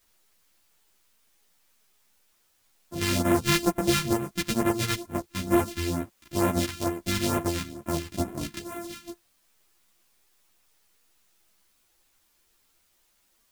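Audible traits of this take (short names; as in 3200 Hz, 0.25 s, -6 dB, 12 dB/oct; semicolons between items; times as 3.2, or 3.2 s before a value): a buzz of ramps at a fixed pitch in blocks of 128 samples; phasing stages 2, 2.2 Hz, lowest notch 580–4500 Hz; a quantiser's noise floor 12-bit, dither triangular; a shimmering, thickened sound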